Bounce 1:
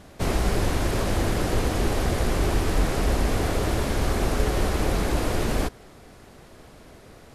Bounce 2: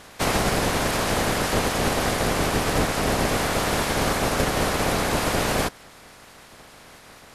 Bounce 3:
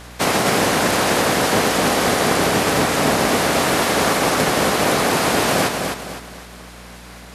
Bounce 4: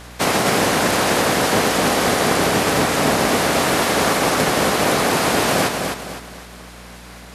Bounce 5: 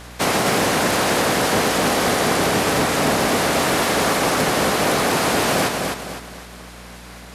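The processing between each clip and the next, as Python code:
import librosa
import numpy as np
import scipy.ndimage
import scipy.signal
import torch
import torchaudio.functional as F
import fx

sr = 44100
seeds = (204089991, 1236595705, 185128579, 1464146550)

y1 = fx.spec_clip(x, sr, under_db=17)
y1 = fx.rider(y1, sr, range_db=10, speed_s=0.5)
y1 = fx.peak_eq(y1, sr, hz=350.0, db=-3.5, octaves=0.26)
y2 = scipy.signal.sosfilt(scipy.signal.butter(2, 150.0, 'highpass', fs=sr, output='sos'), y1)
y2 = fx.add_hum(y2, sr, base_hz=60, snr_db=21)
y2 = fx.echo_feedback(y2, sr, ms=255, feedback_pct=37, wet_db=-5.0)
y2 = F.gain(torch.from_numpy(y2), 5.0).numpy()
y3 = y2
y4 = 10.0 ** (-9.5 / 20.0) * np.tanh(y3 / 10.0 ** (-9.5 / 20.0))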